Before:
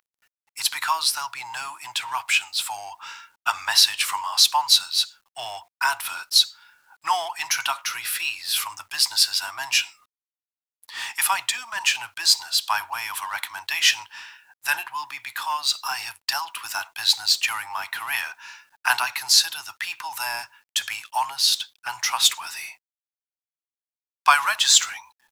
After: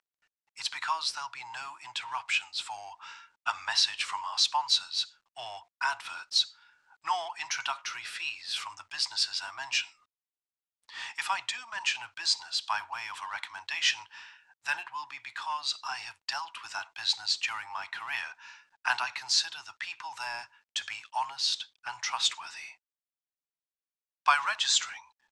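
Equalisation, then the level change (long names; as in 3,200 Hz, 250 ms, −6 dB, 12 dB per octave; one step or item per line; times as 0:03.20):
low-pass filter 8,700 Hz 24 dB per octave
high-frequency loss of the air 53 metres
−7.0 dB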